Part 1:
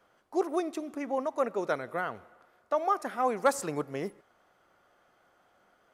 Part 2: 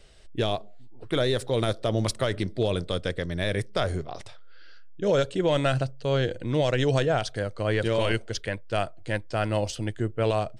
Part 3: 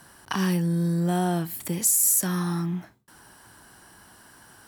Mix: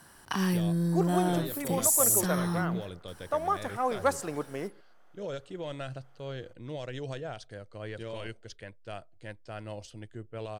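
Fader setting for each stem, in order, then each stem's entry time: -1.5 dB, -14.5 dB, -3.5 dB; 0.60 s, 0.15 s, 0.00 s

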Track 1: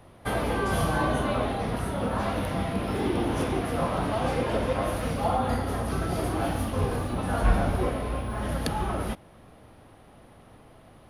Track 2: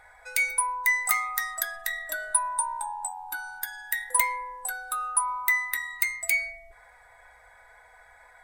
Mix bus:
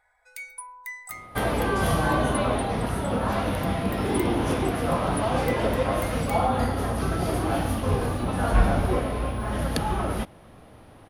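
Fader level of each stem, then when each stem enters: +2.5 dB, -14.0 dB; 1.10 s, 0.00 s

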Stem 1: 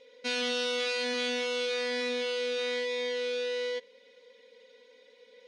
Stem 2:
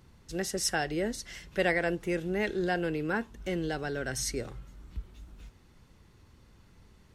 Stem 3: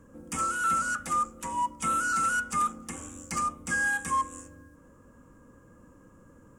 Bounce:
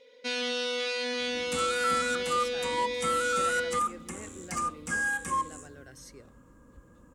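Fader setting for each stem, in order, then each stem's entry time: -0.5 dB, -16.5 dB, -2.0 dB; 0.00 s, 1.80 s, 1.20 s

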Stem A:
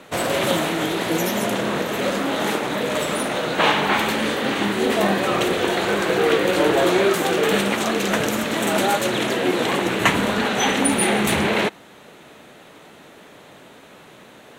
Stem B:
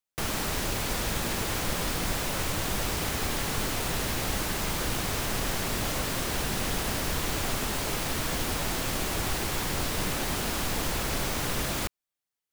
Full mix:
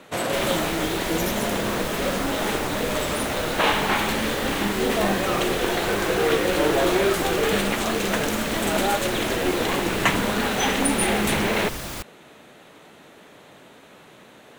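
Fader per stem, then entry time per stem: -3.0 dB, -2.5 dB; 0.00 s, 0.15 s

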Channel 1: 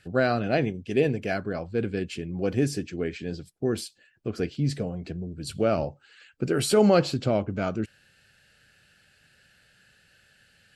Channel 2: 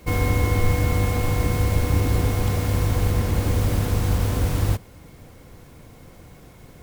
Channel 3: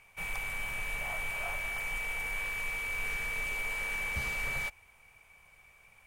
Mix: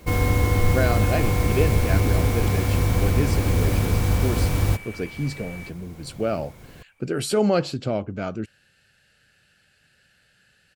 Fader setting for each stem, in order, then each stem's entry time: -1.0 dB, +0.5 dB, -6.5 dB; 0.60 s, 0.00 s, 1.00 s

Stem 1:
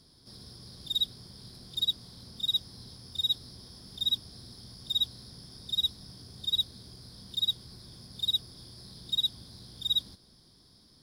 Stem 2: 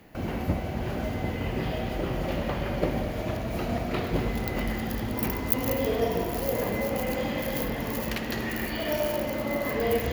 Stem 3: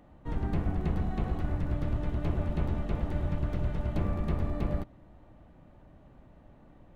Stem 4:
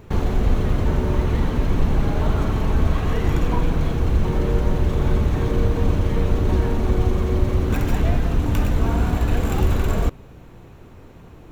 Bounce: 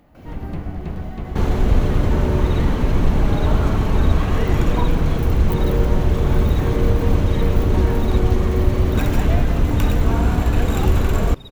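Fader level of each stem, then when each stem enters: -16.0 dB, -10.5 dB, +2.0 dB, +2.5 dB; 1.55 s, 0.00 s, 0.00 s, 1.25 s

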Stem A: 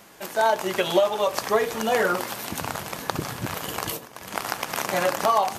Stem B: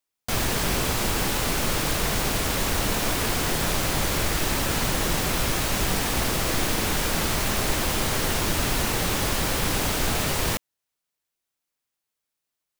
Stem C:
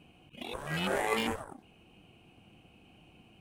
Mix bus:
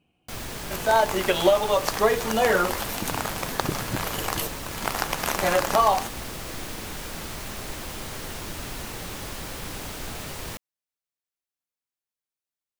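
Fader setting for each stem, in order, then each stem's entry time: +1.0 dB, -10.5 dB, -11.0 dB; 0.50 s, 0.00 s, 0.00 s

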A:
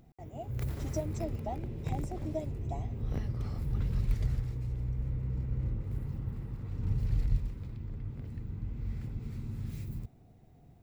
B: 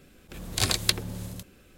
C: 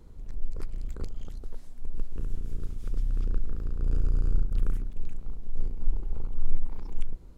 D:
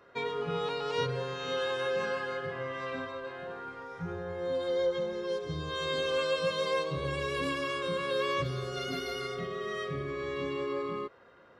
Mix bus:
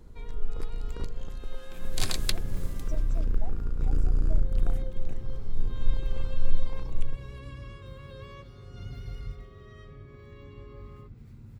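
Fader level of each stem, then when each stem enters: -9.0 dB, -7.0 dB, +1.0 dB, -17.5 dB; 1.95 s, 1.40 s, 0.00 s, 0.00 s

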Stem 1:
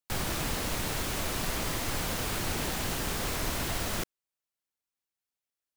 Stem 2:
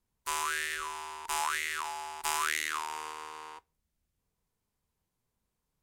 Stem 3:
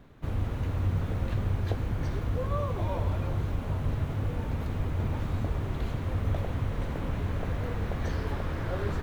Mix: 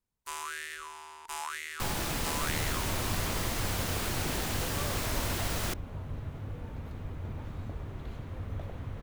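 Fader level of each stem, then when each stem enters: -1.0 dB, -6.0 dB, -9.0 dB; 1.70 s, 0.00 s, 2.25 s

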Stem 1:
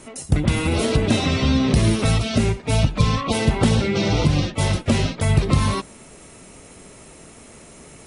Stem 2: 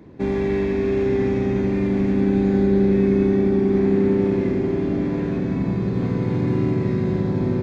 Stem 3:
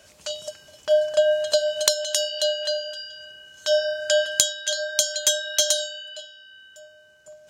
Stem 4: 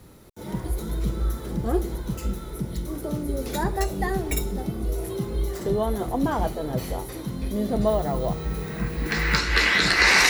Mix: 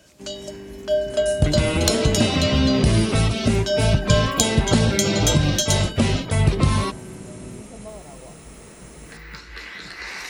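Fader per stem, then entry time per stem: -0.5 dB, -16.5 dB, -2.0 dB, -16.5 dB; 1.10 s, 0.00 s, 0.00 s, 0.00 s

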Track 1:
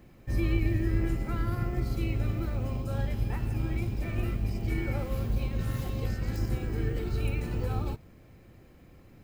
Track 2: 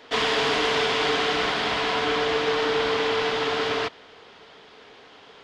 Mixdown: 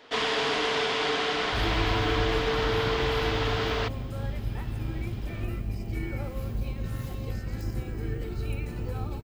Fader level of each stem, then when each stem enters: -2.0 dB, -4.0 dB; 1.25 s, 0.00 s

